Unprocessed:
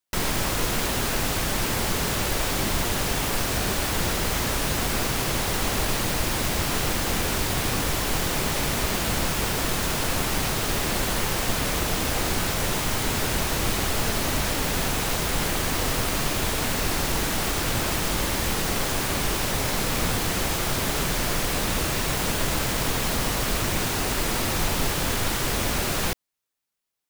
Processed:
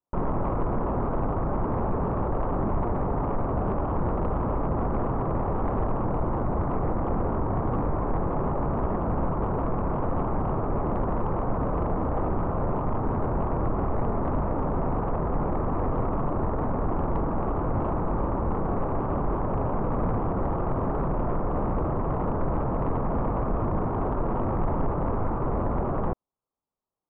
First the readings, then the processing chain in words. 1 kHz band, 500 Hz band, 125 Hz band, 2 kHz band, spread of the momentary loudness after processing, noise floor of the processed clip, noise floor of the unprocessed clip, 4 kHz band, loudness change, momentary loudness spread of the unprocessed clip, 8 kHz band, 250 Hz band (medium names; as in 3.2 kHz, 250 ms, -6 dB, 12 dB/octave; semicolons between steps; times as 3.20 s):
+0.5 dB, +1.5 dB, +1.5 dB, -17.5 dB, 1 LU, -28 dBFS, -27 dBFS, under -35 dB, -3.5 dB, 0 LU, under -40 dB, +1.5 dB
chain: steep low-pass 1.2 kHz 48 dB/octave; saturation -21 dBFS, distortion -17 dB; trim +3 dB